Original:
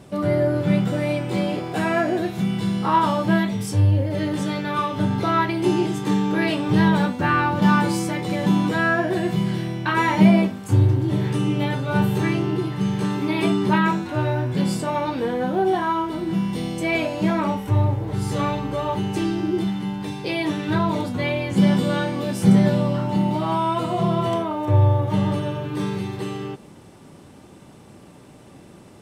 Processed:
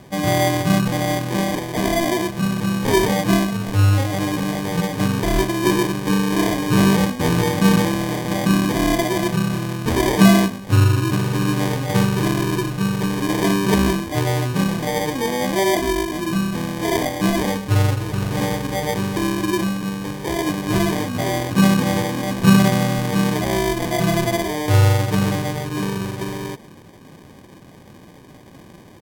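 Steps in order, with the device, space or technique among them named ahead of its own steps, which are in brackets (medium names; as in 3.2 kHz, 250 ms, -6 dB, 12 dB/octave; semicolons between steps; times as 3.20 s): crushed at another speed (playback speed 1.25×; sample-and-hold 26×; playback speed 0.8×); trim +2 dB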